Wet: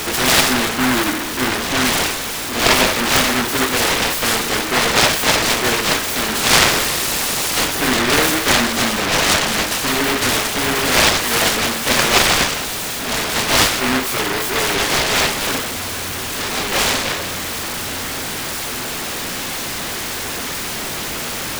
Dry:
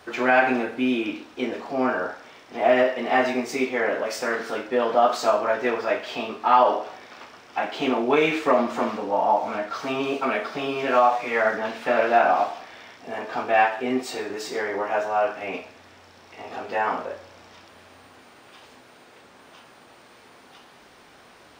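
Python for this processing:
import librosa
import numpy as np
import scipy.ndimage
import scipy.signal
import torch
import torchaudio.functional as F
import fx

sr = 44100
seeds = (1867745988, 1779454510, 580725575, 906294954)

p1 = x + 0.5 * 10.0 ** (-24.5 / 20.0) * np.sign(x)
p2 = fx.dmg_tone(p1, sr, hz=1900.0, level_db=-24.0, at=(6.34, 7.65), fade=0.02)
p3 = (np.mod(10.0 ** (17.0 / 20.0) * p2 + 1.0, 2.0) - 1.0) / 10.0 ** (17.0 / 20.0)
p4 = p2 + (p3 * 10.0 ** (-8.5 / 20.0))
p5 = fx.noise_mod_delay(p4, sr, seeds[0], noise_hz=1300.0, depth_ms=0.45)
y = p5 * 10.0 ** (2.5 / 20.0)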